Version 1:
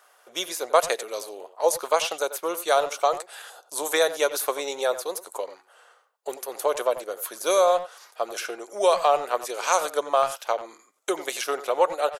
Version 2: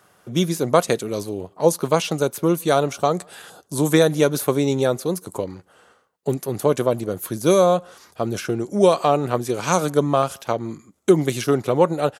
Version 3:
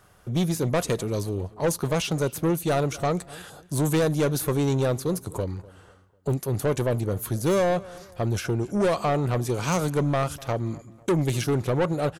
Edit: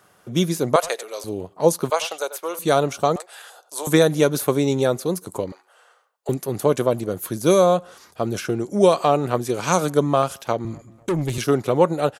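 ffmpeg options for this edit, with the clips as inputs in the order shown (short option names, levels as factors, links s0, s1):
-filter_complex "[0:a]asplit=4[s0][s1][s2][s3];[1:a]asplit=6[s4][s5][s6][s7][s8][s9];[s4]atrim=end=0.762[s10];[s0]atrim=start=0.758:end=1.242[s11];[s5]atrim=start=1.238:end=1.902[s12];[s1]atrim=start=1.898:end=2.592[s13];[s6]atrim=start=2.588:end=3.162[s14];[s2]atrim=start=3.158:end=3.872[s15];[s7]atrim=start=3.868:end=5.522[s16];[s3]atrim=start=5.518:end=6.292[s17];[s8]atrim=start=6.288:end=10.652[s18];[2:a]atrim=start=10.648:end=11.382[s19];[s9]atrim=start=11.378[s20];[s10][s11]acrossfade=d=0.004:c1=hsin:c2=hsin[s21];[s21][s12]acrossfade=d=0.004:c1=hsin:c2=hsin[s22];[s22][s13]acrossfade=d=0.004:c1=hsin:c2=hsin[s23];[s23][s14]acrossfade=d=0.004:c1=hsin:c2=hsin[s24];[s24][s15]acrossfade=d=0.004:c1=hsin:c2=hsin[s25];[s25][s16]acrossfade=d=0.004:c1=hsin:c2=hsin[s26];[s26][s17]acrossfade=d=0.004:c1=hsin:c2=hsin[s27];[s27][s18]acrossfade=d=0.004:c1=hsin:c2=hsin[s28];[s28][s19]acrossfade=d=0.004:c1=hsin:c2=hsin[s29];[s29][s20]acrossfade=d=0.004:c1=hsin:c2=hsin"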